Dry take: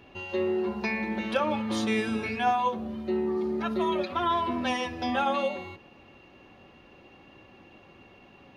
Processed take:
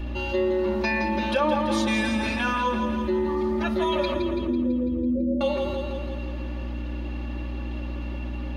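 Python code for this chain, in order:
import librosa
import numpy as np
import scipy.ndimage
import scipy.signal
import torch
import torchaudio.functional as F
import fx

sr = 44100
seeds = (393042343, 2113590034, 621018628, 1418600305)

y = fx.steep_lowpass(x, sr, hz=520.0, slope=96, at=(4.14, 5.41))
y = fx.echo_feedback(y, sr, ms=166, feedback_pct=56, wet_db=-8.0)
y = fx.add_hum(y, sr, base_hz=60, snr_db=12)
y = y + 0.95 * np.pad(y, (int(3.4 * sr / 1000.0), 0))[:len(y)]
y = fx.env_flatten(y, sr, amount_pct=50)
y = F.gain(torch.from_numpy(y), -1.5).numpy()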